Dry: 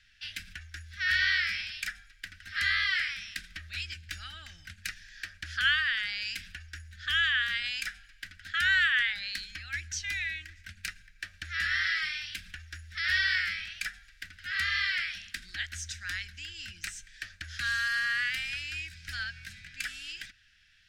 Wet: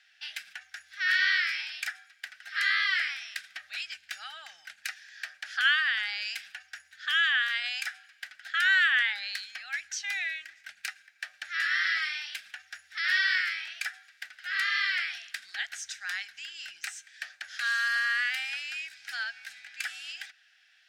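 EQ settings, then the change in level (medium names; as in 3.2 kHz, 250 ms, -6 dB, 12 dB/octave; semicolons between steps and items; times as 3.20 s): resonant high-pass 770 Hz, resonance Q 4.9; 0.0 dB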